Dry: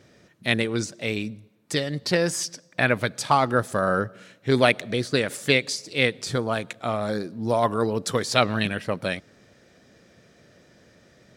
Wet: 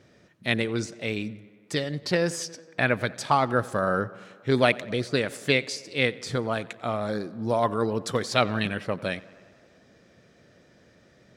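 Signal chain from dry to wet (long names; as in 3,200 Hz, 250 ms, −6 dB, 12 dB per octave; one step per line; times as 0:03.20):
high-shelf EQ 6,300 Hz −6.5 dB
on a send: tape delay 91 ms, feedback 78%, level −21 dB, low-pass 3,900 Hz
on the sum: level −2 dB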